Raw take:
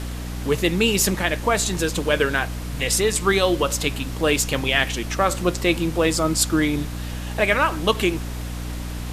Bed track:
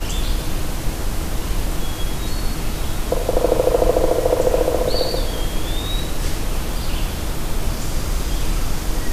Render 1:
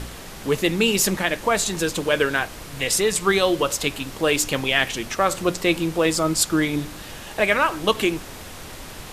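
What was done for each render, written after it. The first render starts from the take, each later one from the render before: de-hum 60 Hz, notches 5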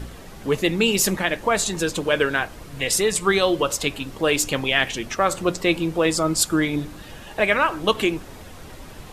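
denoiser 8 dB, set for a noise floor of -38 dBFS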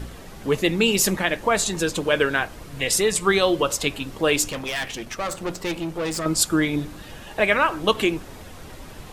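4.48–6.26 tube stage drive 22 dB, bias 0.65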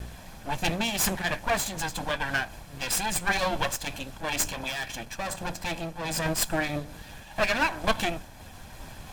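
minimum comb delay 1.2 ms; noise-modulated level, depth 60%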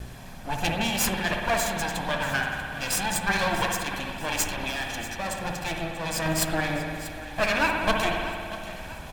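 feedback echo 0.638 s, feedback 48%, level -15 dB; spring tank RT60 2.1 s, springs 57 ms, chirp 55 ms, DRR 1.5 dB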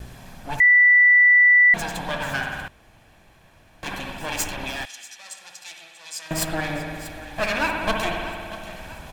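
0.6–1.74 bleep 1970 Hz -10.5 dBFS; 2.68–3.83 room tone; 4.85–6.31 band-pass 6300 Hz, Q 0.98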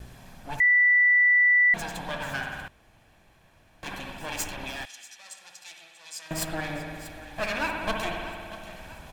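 gain -5.5 dB

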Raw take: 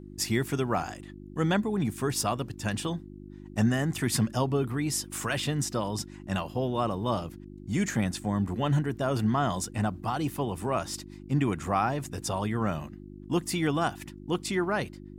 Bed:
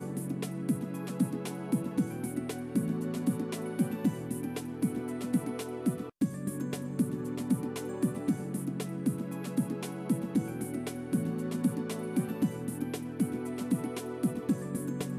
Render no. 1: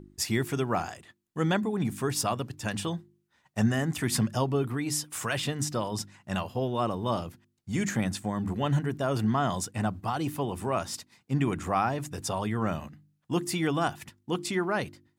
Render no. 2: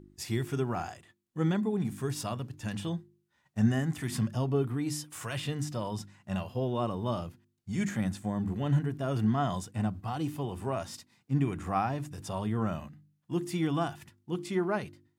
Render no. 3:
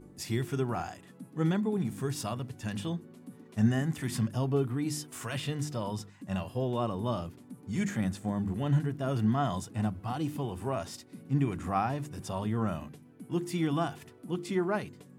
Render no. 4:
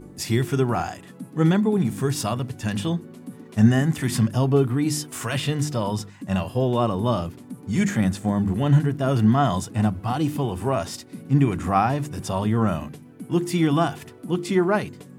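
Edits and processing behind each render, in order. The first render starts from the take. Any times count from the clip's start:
de-hum 50 Hz, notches 7
harmonic-percussive split percussive -11 dB
add bed -18 dB
gain +9.5 dB

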